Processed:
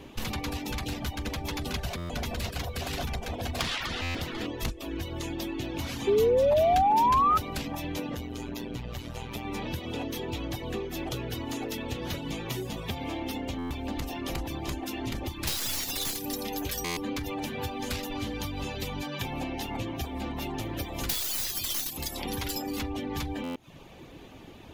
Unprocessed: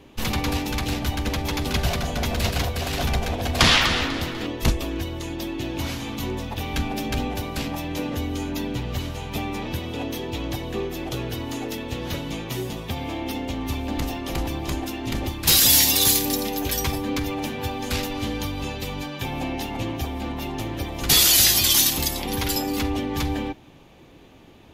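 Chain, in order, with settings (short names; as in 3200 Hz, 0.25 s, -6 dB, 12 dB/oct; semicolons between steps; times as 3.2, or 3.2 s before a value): tracing distortion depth 0.051 ms; reverb removal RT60 0.51 s; 20.65–21.97 high shelf 11000 Hz +9 dB; compressor 5:1, threshold -34 dBFS, peak gain reduction 21 dB; 6.07–7.38 painted sound rise 390–1300 Hz -25 dBFS; 8.15–9.45 AM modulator 120 Hz, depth 50%; stuck buffer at 1.97/4.02/13.58/16.84/23.43, samples 512, times 10; gain +3 dB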